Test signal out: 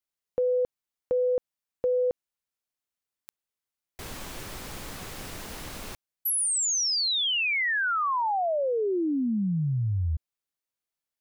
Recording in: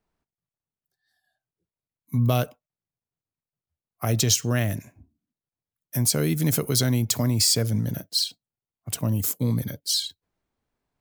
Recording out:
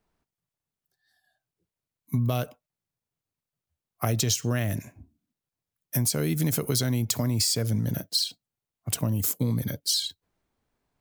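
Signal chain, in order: compressor, threshold -25 dBFS; gain +3 dB

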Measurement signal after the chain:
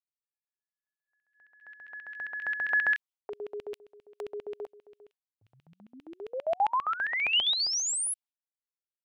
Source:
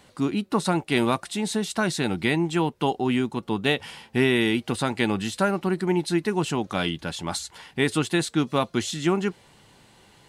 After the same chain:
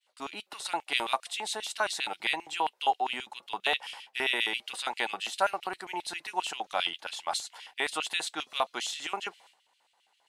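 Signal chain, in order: expander -45 dBFS; LFO high-pass square 7.5 Hz 760–2800 Hz; gain -5 dB

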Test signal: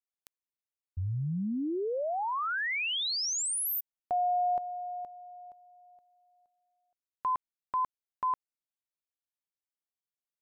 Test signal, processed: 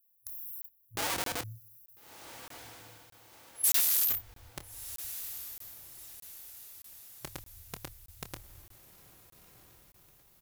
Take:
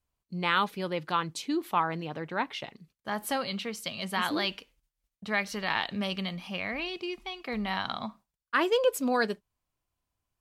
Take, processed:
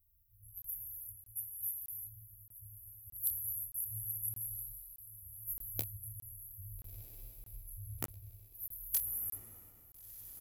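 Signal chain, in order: FFT band-reject 110–11000 Hz; in parallel at +2 dB: negative-ratio compressor -56 dBFS, ratio -1; on the sum: low shelf 200 Hz +11.5 dB; notches 60/120/180/240/300/360 Hz; non-linear reverb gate 0.4 s flat, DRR 0.5 dB; wrapped overs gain 29.5 dB; tilt +2.5 dB/oct; doubler 27 ms -11 dB; on a send: diffused feedback echo 1.351 s, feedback 47%, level -13 dB; on the sum: crackling interface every 0.62 s, samples 1024, zero, from 0.62

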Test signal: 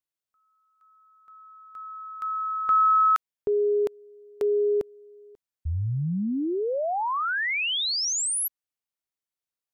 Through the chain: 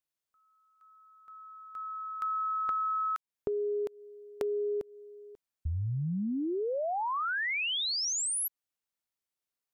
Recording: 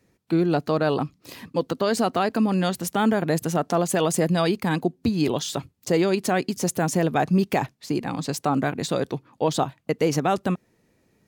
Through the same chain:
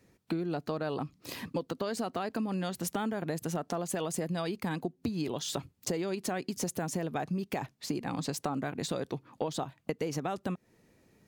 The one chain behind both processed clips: compressor 10:1, threshold -30 dBFS

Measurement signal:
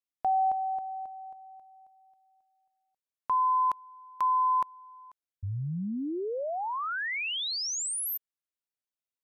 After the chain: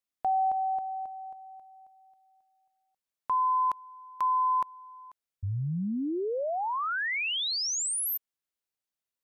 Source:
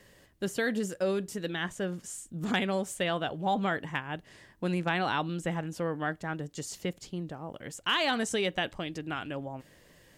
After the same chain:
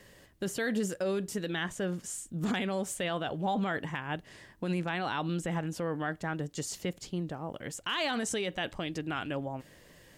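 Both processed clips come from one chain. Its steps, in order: limiter -24.5 dBFS; gain +2 dB

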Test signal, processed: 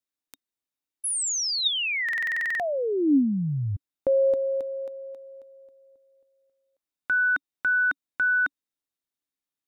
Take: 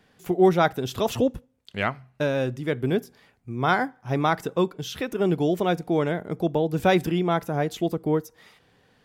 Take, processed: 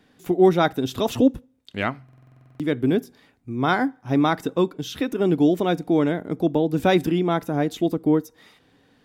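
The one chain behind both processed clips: small resonant body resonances 280/3700 Hz, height 10 dB, ringing for 45 ms; stuck buffer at 2.04, samples 2048, times 11

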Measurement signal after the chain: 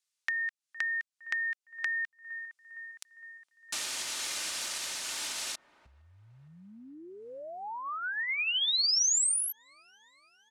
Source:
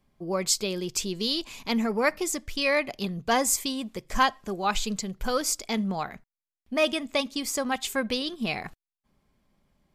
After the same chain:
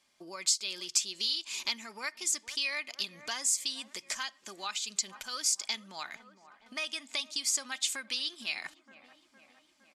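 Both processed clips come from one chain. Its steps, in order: dynamic EQ 560 Hz, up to -6 dB, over -41 dBFS, Q 1.3; comb 3.3 ms, depth 32%; on a send: dark delay 0.461 s, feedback 61%, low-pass 1300 Hz, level -22 dB; on the sum: compressor 12:1, threshold -36 dBFS; weighting filter ITU-R 468

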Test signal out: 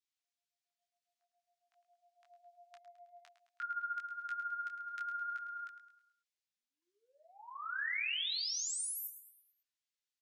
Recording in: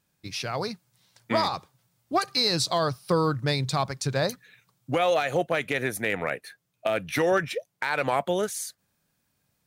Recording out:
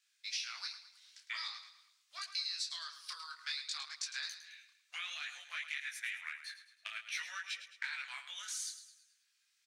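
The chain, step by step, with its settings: differentiator; in parallel at -2 dB: level quantiser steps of 14 dB; on the sum: air absorption 130 m; compressor 6:1, threshold -47 dBFS; HPF 1400 Hz 24 dB/oct; on a send: feedback echo 0.107 s, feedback 45%, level -11.5 dB; on the sum: detuned doubles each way 18 cents; gain +13.5 dB

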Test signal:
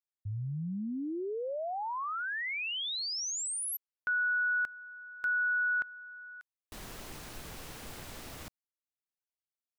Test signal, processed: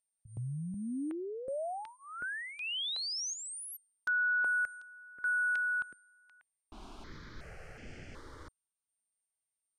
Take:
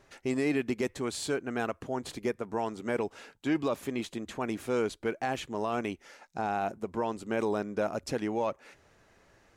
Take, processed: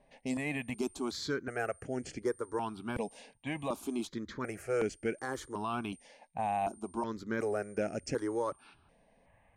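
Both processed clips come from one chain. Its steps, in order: whine 8900 Hz -57 dBFS; low-pass opened by the level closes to 2000 Hz, open at -30 dBFS; step phaser 2.7 Hz 360–3800 Hz

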